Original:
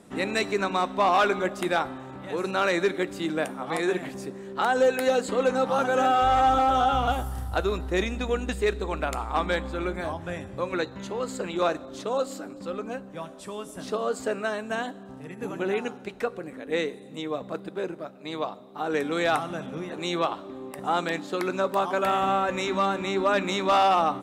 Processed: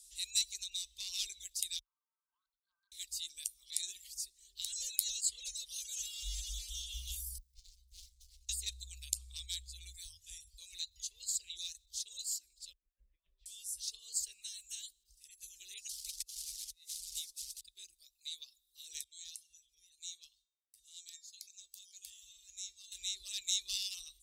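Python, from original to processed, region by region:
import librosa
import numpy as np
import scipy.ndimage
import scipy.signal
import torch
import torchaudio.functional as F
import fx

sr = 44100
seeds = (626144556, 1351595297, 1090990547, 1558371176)

y = fx.chain(x, sr, fx.brickwall_bandpass(low_hz=690.0, high_hz=1600.0),
    fx.over_compress(threshold_db=-40.0, ratio=-1.0), at=(1.79, 2.92))
y = fx.chain(y, sr, fx.comb_fb(f0_hz=180.0, decay_s=0.44, harmonics='all', damping=0.0, mix_pct=90),
    fx.running_max(window=65), at=(7.38, 8.49))
y = fx.chain(y, sr, fx.lowpass(hz=1600.0, slope=24),
    fx.over_compress(threshold_db=-41.0, ratio=-0.5), at=(12.73, 13.46))
y = fx.chain(y, sr, fx.delta_mod(bps=64000, step_db=-37.5),
    fx.hum_notches(base_hz=60, count=6),
    fx.over_compress(threshold_db=-34.0, ratio=-0.5), at=(15.89, 17.61))
y = fx.chain(y, sr, fx.gate_hold(open_db=-28.0, close_db=-34.0, hold_ms=71.0, range_db=-21, attack_ms=1.4, release_ms=100.0),
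    fx.dynamic_eq(hz=6500.0, q=2.3, threshold_db=-56.0, ratio=4.0, max_db=6),
    fx.comb_fb(f0_hz=460.0, decay_s=0.61, harmonics='all', damping=0.0, mix_pct=80), at=(19.04, 22.92))
y = scipy.signal.sosfilt(scipy.signal.butter(2, 49.0, 'highpass', fs=sr, output='sos'), y)
y = fx.dereverb_blind(y, sr, rt60_s=0.71)
y = scipy.signal.sosfilt(scipy.signal.cheby2(4, 60, [120.0, 1500.0], 'bandstop', fs=sr, output='sos'), y)
y = y * 10.0 ** (7.5 / 20.0)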